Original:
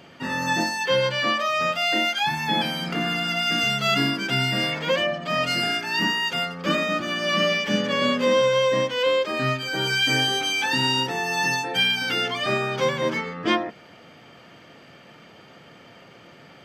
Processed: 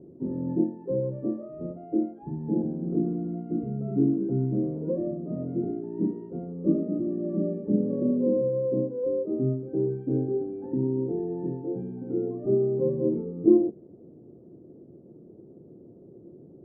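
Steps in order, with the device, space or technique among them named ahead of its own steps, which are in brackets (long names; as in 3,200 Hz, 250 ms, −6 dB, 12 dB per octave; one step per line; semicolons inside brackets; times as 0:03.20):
under water (low-pass filter 430 Hz 24 dB per octave; parametric band 360 Hz +10.5 dB 0.45 octaves)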